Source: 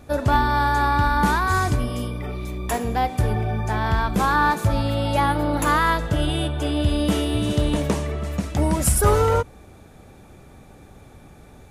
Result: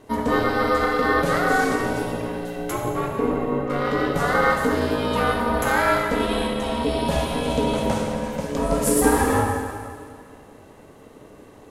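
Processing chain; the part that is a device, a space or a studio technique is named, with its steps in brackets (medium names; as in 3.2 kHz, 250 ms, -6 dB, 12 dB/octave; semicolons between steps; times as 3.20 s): 2.72–3.70 s: distance through air 300 m; plate-style reverb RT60 2 s, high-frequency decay 0.95×, DRR -0.5 dB; alien voice (ring modulator 360 Hz; flange 0.95 Hz, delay 0.8 ms, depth 9 ms, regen -78%); trim +3.5 dB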